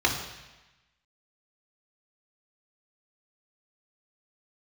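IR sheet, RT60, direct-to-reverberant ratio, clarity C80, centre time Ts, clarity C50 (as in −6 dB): 1.1 s, −0.5 dB, 8.5 dB, 31 ms, 6.5 dB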